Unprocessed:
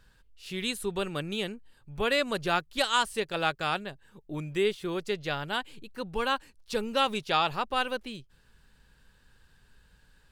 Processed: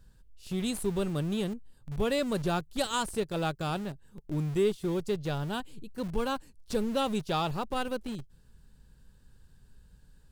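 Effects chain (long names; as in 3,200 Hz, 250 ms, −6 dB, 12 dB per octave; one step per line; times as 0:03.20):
drawn EQ curve 170 Hz 0 dB, 2,200 Hz −16 dB, 8,000 Hz −5 dB
in parallel at −11 dB: comparator with hysteresis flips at −42 dBFS
on the sum: level +5 dB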